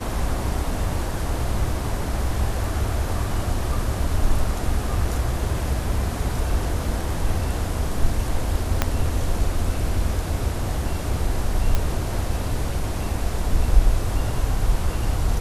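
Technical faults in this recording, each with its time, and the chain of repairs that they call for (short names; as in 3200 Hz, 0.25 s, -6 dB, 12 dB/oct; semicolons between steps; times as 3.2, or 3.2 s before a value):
8.82 pop -4 dBFS
11.75 pop -8 dBFS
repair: de-click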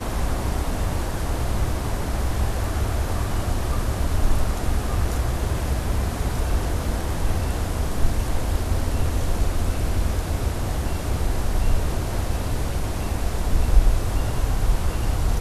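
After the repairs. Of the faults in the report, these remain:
8.82 pop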